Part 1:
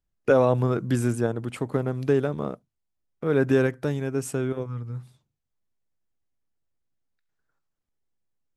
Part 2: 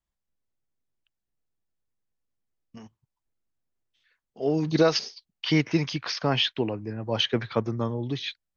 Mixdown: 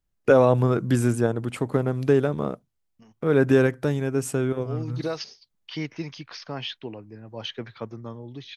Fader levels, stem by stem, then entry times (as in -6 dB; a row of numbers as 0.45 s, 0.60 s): +2.5 dB, -9.0 dB; 0.00 s, 0.25 s